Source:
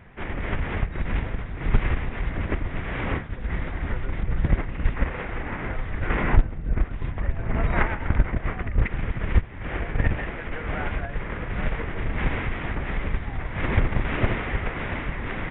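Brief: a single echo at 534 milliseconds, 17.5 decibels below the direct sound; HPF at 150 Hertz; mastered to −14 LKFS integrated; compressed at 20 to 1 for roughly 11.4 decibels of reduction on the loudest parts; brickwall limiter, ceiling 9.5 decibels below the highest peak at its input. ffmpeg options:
ffmpeg -i in.wav -af "highpass=150,acompressor=threshold=-32dB:ratio=20,alimiter=level_in=6.5dB:limit=-24dB:level=0:latency=1,volume=-6.5dB,aecho=1:1:534:0.133,volume=26dB" out.wav

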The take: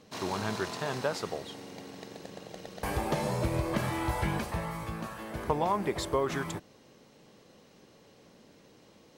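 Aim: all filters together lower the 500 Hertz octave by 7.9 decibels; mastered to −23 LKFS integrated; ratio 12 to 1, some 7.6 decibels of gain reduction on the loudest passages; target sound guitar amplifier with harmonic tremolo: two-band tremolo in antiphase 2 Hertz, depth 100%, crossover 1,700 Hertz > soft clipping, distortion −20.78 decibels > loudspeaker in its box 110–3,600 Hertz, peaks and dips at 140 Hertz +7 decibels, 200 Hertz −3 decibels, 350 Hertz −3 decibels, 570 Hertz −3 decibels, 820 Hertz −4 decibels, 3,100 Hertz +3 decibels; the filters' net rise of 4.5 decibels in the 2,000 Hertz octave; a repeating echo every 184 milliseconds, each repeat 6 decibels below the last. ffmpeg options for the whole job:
ffmpeg -i in.wav -filter_complex "[0:a]equalizer=frequency=500:width_type=o:gain=-7.5,equalizer=frequency=2000:width_type=o:gain=6,acompressor=threshold=-33dB:ratio=12,aecho=1:1:184|368|552|736|920|1104:0.501|0.251|0.125|0.0626|0.0313|0.0157,acrossover=split=1700[link_01][link_02];[link_01]aeval=exprs='val(0)*(1-1/2+1/2*cos(2*PI*2*n/s))':channel_layout=same[link_03];[link_02]aeval=exprs='val(0)*(1-1/2-1/2*cos(2*PI*2*n/s))':channel_layout=same[link_04];[link_03][link_04]amix=inputs=2:normalize=0,asoftclip=threshold=-28.5dB,highpass=110,equalizer=frequency=140:width_type=q:width=4:gain=7,equalizer=frequency=200:width_type=q:width=4:gain=-3,equalizer=frequency=350:width_type=q:width=4:gain=-3,equalizer=frequency=570:width_type=q:width=4:gain=-3,equalizer=frequency=820:width_type=q:width=4:gain=-4,equalizer=frequency=3100:width_type=q:width=4:gain=3,lowpass=frequency=3600:width=0.5412,lowpass=frequency=3600:width=1.3066,volume=21.5dB" out.wav

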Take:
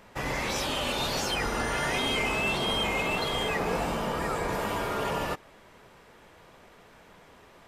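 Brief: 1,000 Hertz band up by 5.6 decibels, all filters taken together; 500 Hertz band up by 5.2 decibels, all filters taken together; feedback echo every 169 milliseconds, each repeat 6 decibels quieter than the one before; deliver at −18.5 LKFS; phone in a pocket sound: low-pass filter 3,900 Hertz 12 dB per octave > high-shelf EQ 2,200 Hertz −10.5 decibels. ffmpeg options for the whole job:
ffmpeg -i in.wav -af "lowpass=3900,equalizer=frequency=500:width_type=o:gain=5,equalizer=frequency=1000:width_type=o:gain=7.5,highshelf=frequency=2200:gain=-10.5,aecho=1:1:169|338|507|676|845|1014:0.501|0.251|0.125|0.0626|0.0313|0.0157,volume=7.5dB" out.wav

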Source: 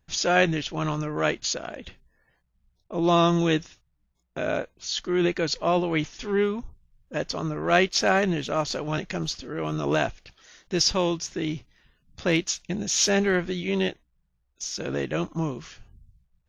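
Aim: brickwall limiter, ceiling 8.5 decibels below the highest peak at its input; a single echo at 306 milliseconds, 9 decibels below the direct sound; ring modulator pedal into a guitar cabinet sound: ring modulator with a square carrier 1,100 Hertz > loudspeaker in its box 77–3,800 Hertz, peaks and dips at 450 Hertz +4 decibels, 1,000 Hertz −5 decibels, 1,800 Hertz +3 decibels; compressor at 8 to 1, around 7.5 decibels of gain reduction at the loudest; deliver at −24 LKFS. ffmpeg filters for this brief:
ffmpeg -i in.wav -af "acompressor=threshold=-23dB:ratio=8,alimiter=limit=-21.5dB:level=0:latency=1,aecho=1:1:306:0.355,aeval=exprs='val(0)*sgn(sin(2*PI*1100*n/s))':channel_layout=same,highpass=77,equalizer=frequency=450:width_type=q:width=4:gain=4,equalizer=frequency=1000:width_type=q:width=4:gain=-5,equalizer=frequency=1800:width_type=q:width=4:gain=3,lowpass=frequency=3800:width=0.5412,lowpass=frequency=3800:width=1.3066,volume=7.5dB" out.wav

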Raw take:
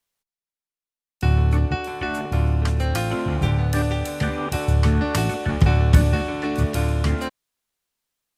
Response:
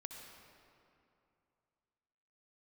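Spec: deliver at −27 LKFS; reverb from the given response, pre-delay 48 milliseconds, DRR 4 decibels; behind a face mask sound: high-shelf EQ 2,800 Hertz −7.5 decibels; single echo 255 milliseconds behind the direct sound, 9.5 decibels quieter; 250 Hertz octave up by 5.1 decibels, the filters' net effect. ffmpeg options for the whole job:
-filter_complex "[0:a]equalizer=frequency=250:width_type=o:gain=7,aecho=1:1:255:0.335,asplit=2[link_01][link_02];[1:a]atrim=start_sample=2205,adelay=48[link_03];[link_02][link_03]afir=irnorm=-1:irlink=0,volume=-0.5dB[link_04];[link_01][link_04]amix=inputs=2:normalize=0,highshelf=frequency=2800:gain=-7.5,volume=-8dB"

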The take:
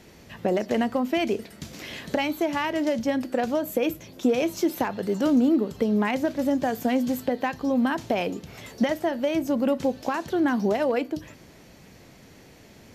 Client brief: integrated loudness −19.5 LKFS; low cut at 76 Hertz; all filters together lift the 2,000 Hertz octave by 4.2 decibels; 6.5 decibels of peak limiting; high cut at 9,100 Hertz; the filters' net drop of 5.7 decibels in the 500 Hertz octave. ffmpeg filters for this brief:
ffmpeg -i in.wav -af "highpass=76,lowpass=9100,equalizer=frequency=500:width_type=o:gain=-7.5,equalizer=frequency=2000:width_type=o:gain=5.5,volume=9.5dB,alimiter=limit=-9dB:level=0:latency=1" out.wav

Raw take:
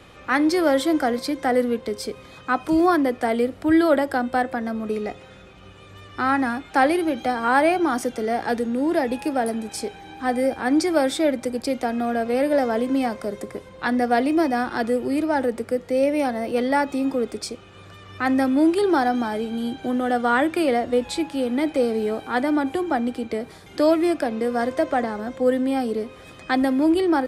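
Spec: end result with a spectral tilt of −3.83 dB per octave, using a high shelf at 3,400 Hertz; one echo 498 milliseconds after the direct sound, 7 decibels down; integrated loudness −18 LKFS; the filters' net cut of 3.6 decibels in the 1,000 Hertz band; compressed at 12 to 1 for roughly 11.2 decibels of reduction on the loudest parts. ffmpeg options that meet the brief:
ffmpeg -i in.wav -af "equalizer=frequency=1000:width_type=o:gain=-6,highshelf=frequency=3400:gain=5.5,acompressor=threshold=-26dB:ratio=12,aecho=1:1:498:0.447,volume=12dB" out.wav

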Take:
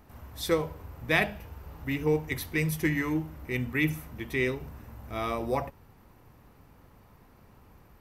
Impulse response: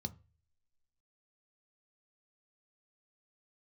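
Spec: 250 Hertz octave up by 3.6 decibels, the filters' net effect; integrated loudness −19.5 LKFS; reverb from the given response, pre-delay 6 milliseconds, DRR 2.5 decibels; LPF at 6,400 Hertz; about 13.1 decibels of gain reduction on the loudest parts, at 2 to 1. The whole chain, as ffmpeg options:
-filter_complex "[0:a]lowpass=6400,equalizer=frequency=250:width_type=o:gain=5,acompressor=threshold=-44dB:ratio=2,asplit=2[link_01][link_02];[1:a]atrim=start_sample=2205,adelay=6[link_03];[link_02][link_03]afir=irnorm=-1:irlink=0,volume=-0.5dB[link_04];[link_01][link_04]amix=inputs=2:normalize=0,volume=14.5dB"

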